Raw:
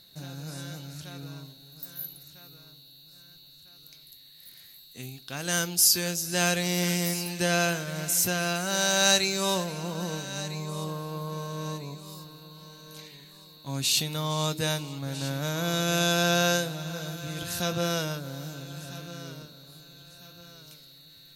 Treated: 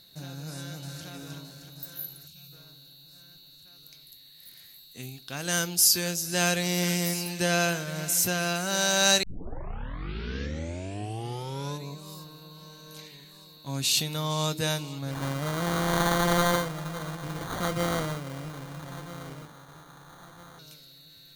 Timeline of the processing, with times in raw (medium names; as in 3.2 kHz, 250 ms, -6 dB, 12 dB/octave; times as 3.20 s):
0.51–1.07 s: echo throw 310 ms, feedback 65%, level -5 dB
2.27–2.53 s: time-frequency box 230–2200 Hz -13 dB
9.23 s: tape start 2.65 s
15.11–20.59 s: sample-rate reducer 2.6 kHz